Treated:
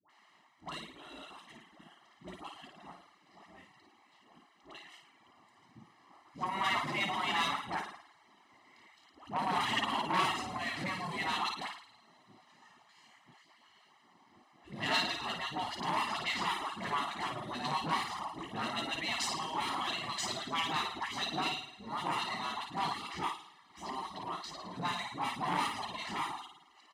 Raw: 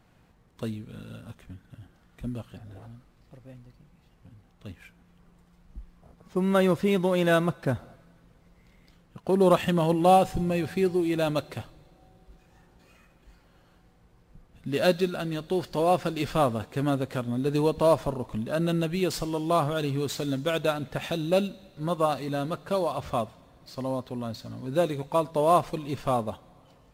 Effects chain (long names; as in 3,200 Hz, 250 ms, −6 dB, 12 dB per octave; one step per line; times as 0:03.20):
high-frequency loss of the air 76 metres
flutter between parallel walls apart 9.4 metres, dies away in 0.81 s
in parallel at −6 dB: hard clipping −23.5 dBFS, distortion −7 dB
on the sum: reverb reduction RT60 0.5 s
gate on every frequency bin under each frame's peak −15 dB weak
high-pass filter 150 Hz 12 dB per octave
comb filter 1 ms, depth 79%
all-pass dispersion highs, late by 99 ms, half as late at 850 Hz
saturating transformer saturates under 1,700 Hz